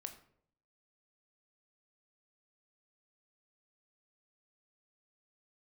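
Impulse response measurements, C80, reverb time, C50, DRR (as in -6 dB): 14.5 dB, 0.65 s, 11.0 dB, 6.0 dB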